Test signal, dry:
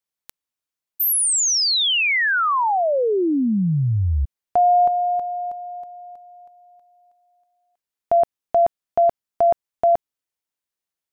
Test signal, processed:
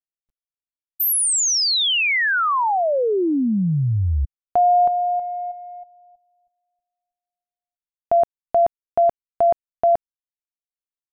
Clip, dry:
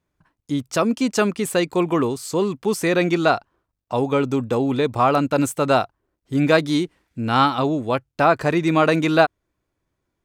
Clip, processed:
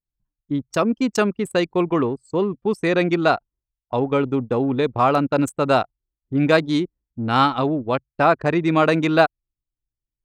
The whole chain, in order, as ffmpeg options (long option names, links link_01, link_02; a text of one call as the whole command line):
ffmpeg -i in.wav -af "anlmdn=398" out.wav